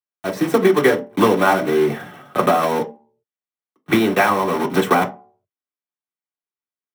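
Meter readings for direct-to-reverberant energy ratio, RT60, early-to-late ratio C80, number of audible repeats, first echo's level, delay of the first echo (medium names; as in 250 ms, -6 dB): 1.5 dB, 0.45 s, 21.0 dB, no echo, no echo, no echo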